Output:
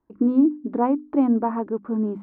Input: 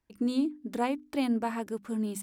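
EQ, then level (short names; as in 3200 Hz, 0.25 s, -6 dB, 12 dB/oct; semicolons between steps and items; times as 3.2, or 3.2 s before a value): synth low-pass 1100 Hz, resonance Q 2.2; air absorption 150 m; bell 320 Hz +10.5 dB 1.2 oct; +1.5 dB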